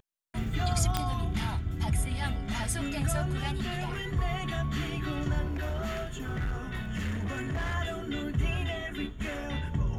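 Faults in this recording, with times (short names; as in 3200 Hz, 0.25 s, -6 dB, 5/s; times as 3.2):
0.97 pop -13 dBFS
5.46–7.75 clipped -28 dBFS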